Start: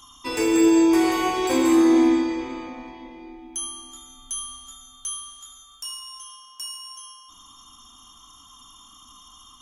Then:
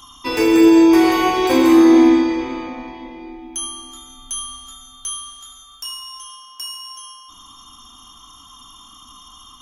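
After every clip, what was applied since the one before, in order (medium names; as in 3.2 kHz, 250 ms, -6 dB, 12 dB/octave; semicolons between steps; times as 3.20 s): peaking EQ 8 kHz -13.5 dB 0.34 oct; trim +6.5 dB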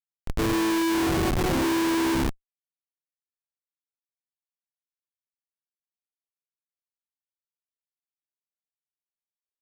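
Schmitt trigger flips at -13 dBFS; trim -5 dB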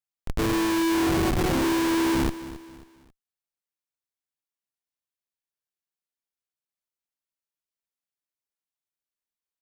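feedback delay 270 ms, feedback 38%, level -15.5 dB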